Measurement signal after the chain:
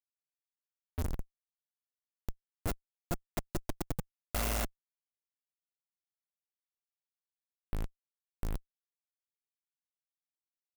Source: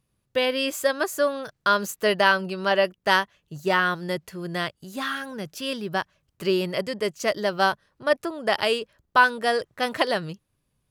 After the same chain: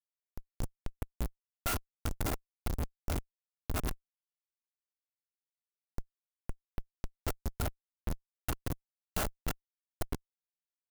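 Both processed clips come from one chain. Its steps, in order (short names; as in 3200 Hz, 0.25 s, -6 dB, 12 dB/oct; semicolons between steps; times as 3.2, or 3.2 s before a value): FFT order left unsorted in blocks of 256 samples; inverse Chebyshev low-pass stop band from 9000 Hz, stop band 60 dB; low shelf 380 Hz +8.5 dB; Schmitt trigger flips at -23.5 dBFS; transient shaper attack +1 dB, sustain -5 dB; clock jitter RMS 0.086 ms; gain +2.5 dB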